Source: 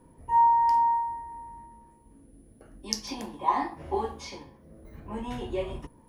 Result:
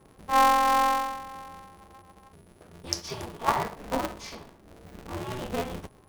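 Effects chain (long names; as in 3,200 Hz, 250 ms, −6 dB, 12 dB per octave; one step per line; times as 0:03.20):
frozen spectrum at 0:01.78, 0.52 s
ring modulator with a square carrier 130 Hz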